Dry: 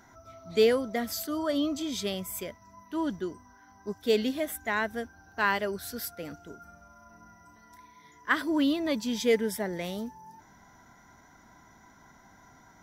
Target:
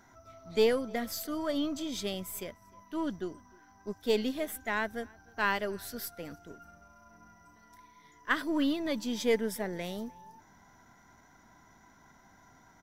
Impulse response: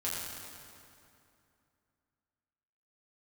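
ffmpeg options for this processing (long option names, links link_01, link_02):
-filter_complex "[0:a]aeval=exprs='if(lt(val(0),0),0.708*val(0),val(0))':channel_layout=same,asplit=2[link_01][link_02];[link_02]adelay=303.2,volume=-26dB,highshelf=frequency=4000:gain=-6.82[link_03];[link_01][link_03]amix=inputs=2:normalize=0,volume=-2dB"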